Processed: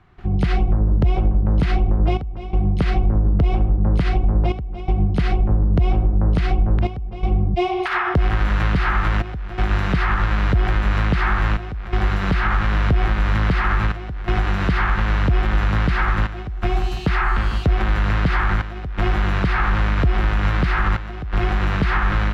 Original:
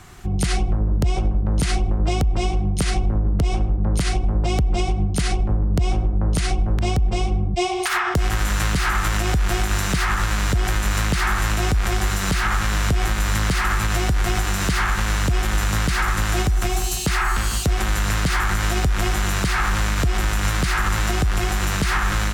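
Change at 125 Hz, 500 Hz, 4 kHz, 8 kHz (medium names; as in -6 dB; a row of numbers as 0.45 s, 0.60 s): +2.0 dB, +1.0 dB, -6.5 dB, under -20 dB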